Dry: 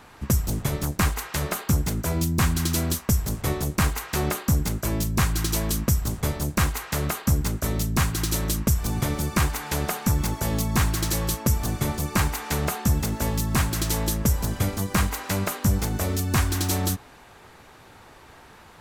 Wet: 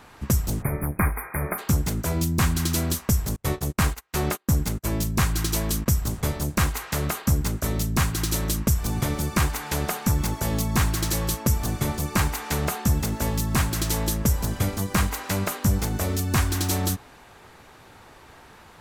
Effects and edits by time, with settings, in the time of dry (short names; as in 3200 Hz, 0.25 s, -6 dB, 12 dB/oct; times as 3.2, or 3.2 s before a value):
0.62–1.58 spectral delete 2500–9100 Hz
3.36–5.86 gate -28 dBFS, range -34 dB